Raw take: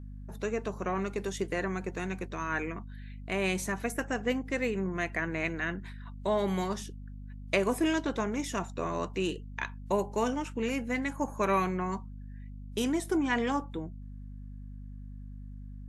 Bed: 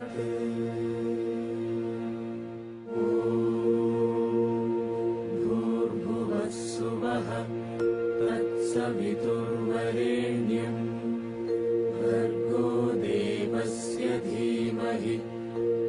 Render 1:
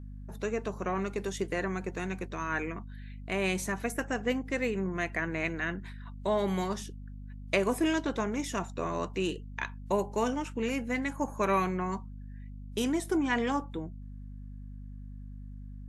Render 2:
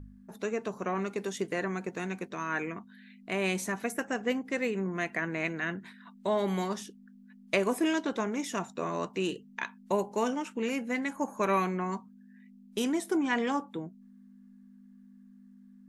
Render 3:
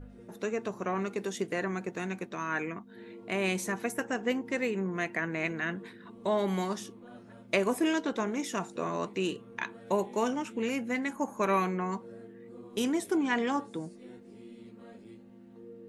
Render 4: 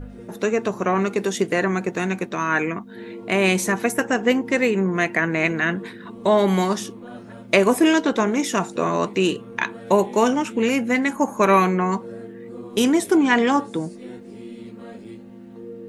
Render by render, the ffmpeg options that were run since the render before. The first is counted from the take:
-af anull
-af "bandreject=f=50:t=h:w=4,bandreject=f=100:t=h:w=4,bandreject=f=150:t=h:w=4"
-filter_complex "[1:a]volume=0.0794[s0];[0:a][s0]amix=inputs=2:normalize=0"
-af "volume=3.76,alimiter=limit=0.794:level=0:latency=1"

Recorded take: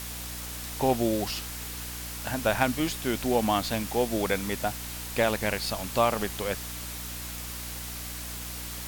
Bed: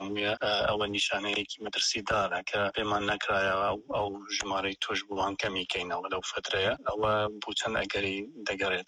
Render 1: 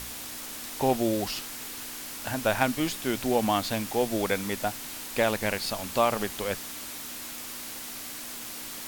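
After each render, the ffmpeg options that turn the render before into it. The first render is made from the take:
-af "bandreject=f=60:t=h:w=4,bandreject=f=120:t=h:w=4,bandreject=f=180:t=h:w=4"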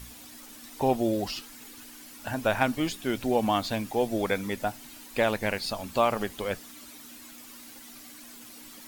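-af "afftdn=nr=11:nf=-39"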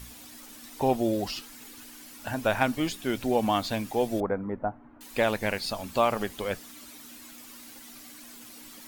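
-filter_complex "[0:a]asettb=1/sr,asplit=3[s0][s1][s2];[s0]atrim=end=4.204[s3];[s1]atrim=start=4.2:end=5.01,asetpts=PTS-STARTPTS,afade=t=in:d=0.004:c=qsin,afade=t=out:st=0.806:d=0.004:c=qsin,lowpass=f=1300:w=0.5412,lowpass=f=1300:w=1.3066[s4];[s2]atrim=start=5.006[s5];[s3][s4]acrossfade=d=0.004:c1=hsin:c2=qsin[s6];[s6][s5]acrossfade=d=0.004:c1=qsin:c2=hsin"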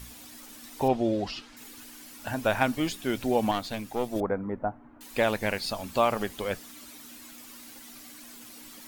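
-filter_complex "[0:a]asettb=1/sr,asplit=3[s0][s1][s2];[s0]atrim=end=0.884[s3];[s1]atrim=start=0.88:end=1.57,asetpts=PTS-STARTPTS,afade=t=in:d=0.004:c=qsin,afade=t=out:st=0.686:d=0.004:c=qsin,lowpass=4600[s4];[s2]atrim=start=1.566[s5];[s3][s4]acrossfade=d=0.004:c1=hsin:c2=qsin[s6];[s6][s5]acrossfade=d=0.004:c1=qsin:c2=hsin,asettb=1/sr,asplit=3[s7][s8][s9];[s7]atrim=end=3.514[s10];[s8]atrim=start=3.51:end=4.16,asetpts=PTS-STARTPTS,afade=t=in:d=0.004:c=qsin,afade=t=out:st=0.646:d=0.004:c=qsin,aeval=exprs='(tanh(7.94*val(0)+0.75)-tanh(0.75))/7.94':c=same[s11];[s9]atrim=start=4.156[s12];[s10][s11]acrossfade=d=0.004:c1=hsin:c2=qsin[s13];[s13][s12]acrossfade=d=0.004:c1=qsin:c2=hsin"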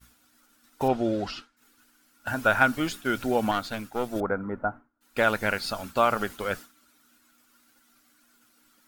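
-af "agate=range=0.0224:threshold=0.0178:ratio=3:detection=peak,equalizer=f=1400:w=4.9:g=13.5"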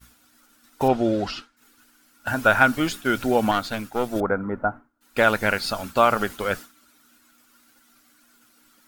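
-af "volume=1.68,alimiter=limit=0.794:level=0:latency=1"

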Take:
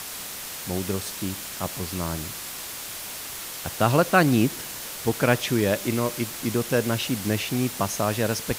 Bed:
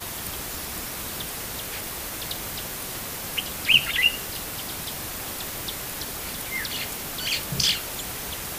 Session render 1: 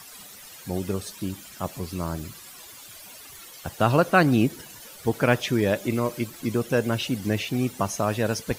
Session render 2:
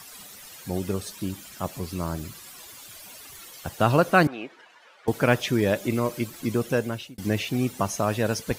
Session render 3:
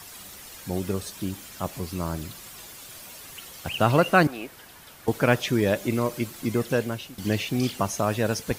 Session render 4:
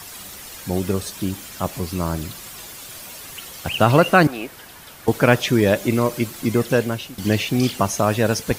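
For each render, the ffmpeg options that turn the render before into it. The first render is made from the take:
-af "afftdn=nr=14:nf=-36"
-filter_complex "[0:a]asettb=1/sr,asplit=3[s0][s1][s2];[s0]atrim=end=4.274[s3];[s1]atrim=start=4.27:end=5.08,asetpts=PTS-STARTPTS,afade=t=in:d=0.004:c=qsin,afade=t=out:st=0.806:d=0.004:c=qsin,highpass=750,lowpass=2100[s4];[s2]atrim=start=5.076[s5];[s3][s4]acrossfade=d=0.004:c1=hsin:c2=qsin[s6];[s6][s5]acrossfade=d=0.004:c1=qsin:c2=hsin,asplit=2[s7][s8];[s7]atrim=end=7.18,asetpts=PTS-STARTPTS,afade=t=out:st=6.69:d=0.49[s9];[s8]atrim=start=7.18,asetpts=PTS-STARTPTS,afade=t=in:d=0.004:c=hsin[s10];[s9][s10]concat=n=2:v=0:a=1"
-filter_complex "[1:a]volume=0.15[s0];[0:a][s0]amix=inputs=2:normalize=0"
-af "volume=2,alimiter=limit=0.794:level=0:latency=1"

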